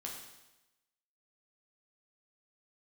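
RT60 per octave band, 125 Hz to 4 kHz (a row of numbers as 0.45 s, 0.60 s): 1.0 s, 1.0 s, 1.0 s, 1.0 s, 1.0 s, 1.0 s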